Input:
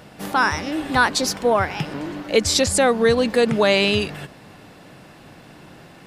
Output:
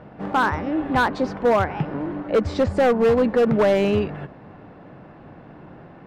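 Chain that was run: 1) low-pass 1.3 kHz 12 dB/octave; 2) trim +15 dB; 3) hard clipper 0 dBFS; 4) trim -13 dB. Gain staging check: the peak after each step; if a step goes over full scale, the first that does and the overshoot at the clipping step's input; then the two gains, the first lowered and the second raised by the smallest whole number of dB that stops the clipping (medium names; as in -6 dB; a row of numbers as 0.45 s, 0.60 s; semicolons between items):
-6.0 dBFS, +9.0 dBFS, 0.0 dBFS, -13.0 dBFS; step 2, 9.0 dB; step 2 +6 dB, step 4 -4 dB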